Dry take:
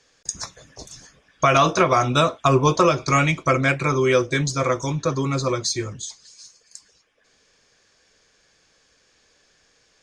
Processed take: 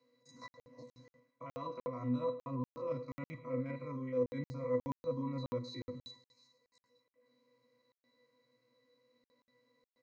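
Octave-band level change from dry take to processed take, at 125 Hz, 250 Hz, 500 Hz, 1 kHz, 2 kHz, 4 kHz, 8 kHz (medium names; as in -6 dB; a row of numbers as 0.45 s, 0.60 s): -20.0 dB, -15.5 dB, -17.0 dB, -26.0 dB, -31.0 dB, -26.5 dB, under -35 dB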